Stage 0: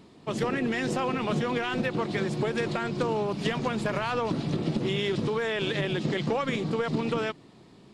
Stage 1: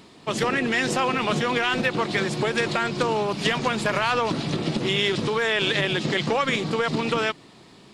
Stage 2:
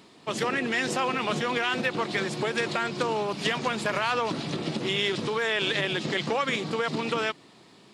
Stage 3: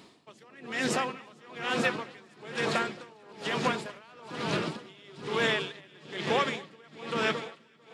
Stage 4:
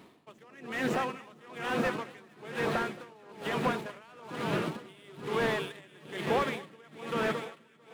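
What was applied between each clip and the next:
tilt shelving filter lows −4.5 dB, about 750 Hz; level +5.5 dB
high-pass filter 150 Hz 6 dB per octave; level −3.5 dB
delay that swaps between a low-pass and a high-pass 223 ms, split 1,400 Hz, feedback 85%, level −6 dB; tremolo with a sine in dB 1.1 Hz, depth 28 dB
running median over 9 samples; slew-rate limiting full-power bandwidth 60 Hz

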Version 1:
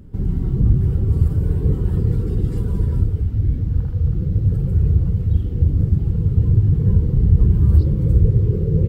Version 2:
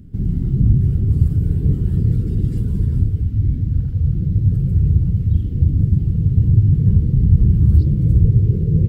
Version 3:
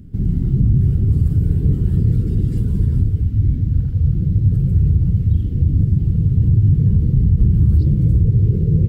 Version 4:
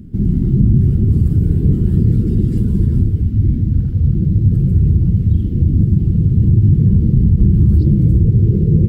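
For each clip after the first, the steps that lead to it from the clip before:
octave-band graphic EQ 125/250/500/1,000 Hz +4/+4/−6/−11 dB; level −1 dB
brickwall limiter −7.5 dBFS, peak gain reduction 6 dB; level +1.5 dB
hollow resonant body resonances 220/330 Hz, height 8 dB, ringing for 45 ms; level +1.5 dB

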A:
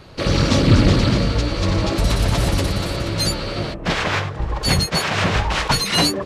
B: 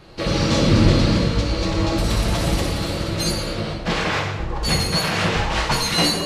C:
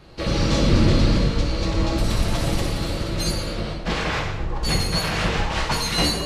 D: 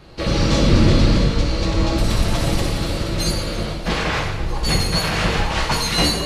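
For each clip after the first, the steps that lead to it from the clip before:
reverb whose tail is shaped and stops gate 300 ms falling, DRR 0 dB; level −4 dB
sub-octave generator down 2 octaves, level 0 dB; level −3 dB
delay with a high-pass on its return 320 ms, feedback 82%, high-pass 2,200 Hz, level −16 dB; level +3 dB

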